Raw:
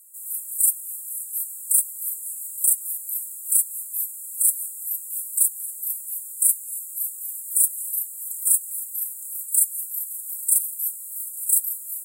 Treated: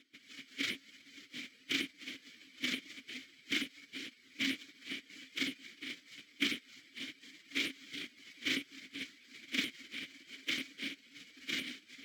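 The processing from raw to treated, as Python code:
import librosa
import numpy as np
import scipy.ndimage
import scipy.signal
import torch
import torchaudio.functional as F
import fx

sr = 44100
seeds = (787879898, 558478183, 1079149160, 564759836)

y = fx.lower_of_two(x, sr, delay_ms=0.31)
y = fx.spec_gate(y, sr, threshold_db=-20, keep='weak')
y = fx.vowel_filter(y, sr, vowel='i')
y = fx.peak_eq(y, sr, hz=11000.0, db=-4.5, octaves=2.4)
y = F.gain(torch.from_numpy(y), 17.5).numpy()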